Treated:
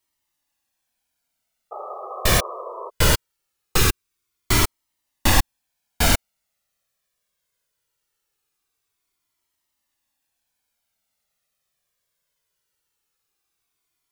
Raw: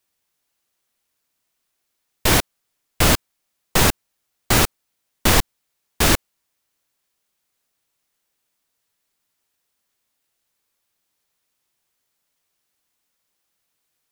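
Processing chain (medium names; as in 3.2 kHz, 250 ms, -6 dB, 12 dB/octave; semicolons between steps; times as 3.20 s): 1.71–2.90 s: painted sound noise 350–1300 Hz -31 dBFS; 3.76–4.62 s: peaking EQ 730 Hz -13 dB -> -6.5 dB 0.64 oct; Shepard-style flanger falling 0.21 Hz; trim +2 dB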